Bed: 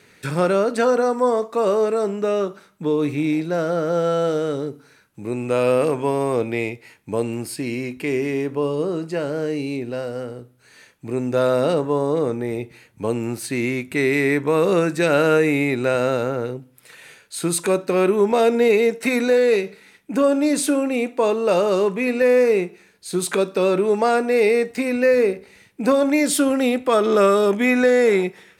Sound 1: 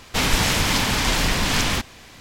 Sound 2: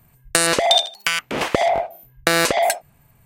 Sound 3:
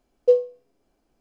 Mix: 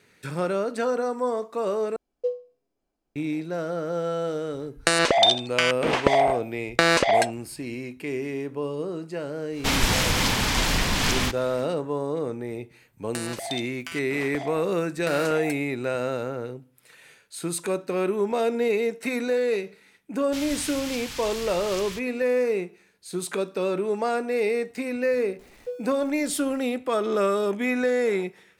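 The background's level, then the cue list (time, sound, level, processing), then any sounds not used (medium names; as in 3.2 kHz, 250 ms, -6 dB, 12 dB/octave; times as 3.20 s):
bed -7.5 dB
1.96 s: replace with 3 -10.5 dB
4.52 s: add 2 -1.5 dB + Bessel low-pass 5.3 kHz
9.50 s: add 1 -2.5 dB, fades 0.10 s
12.80 s: add 2 -17.5 dB
20.18 s: add 1 -6 dB + amplifier tone stack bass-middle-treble 5-5-5
25.39 s: add 3 -17.5 dB + jump at every zero crossing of -31 dBFS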